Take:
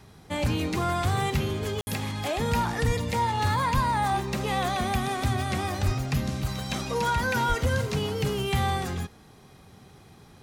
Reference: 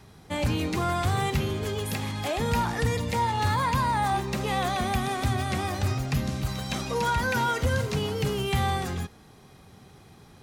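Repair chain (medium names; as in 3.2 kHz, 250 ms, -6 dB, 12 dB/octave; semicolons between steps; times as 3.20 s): de-plosive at 2.86/3.74/5.85/7.48 s; room tone fill 1.81–1.87 s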